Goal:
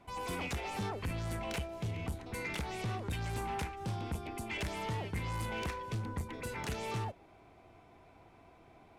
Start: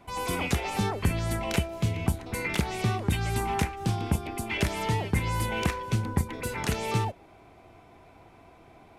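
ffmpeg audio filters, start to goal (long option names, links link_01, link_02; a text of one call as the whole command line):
ffmpeg -i in.wav -af "highshelf=frequency=11000:gain=-6,asoftclip=type=tanh:threshold=-25.5dB,volume=-6dB" out.wav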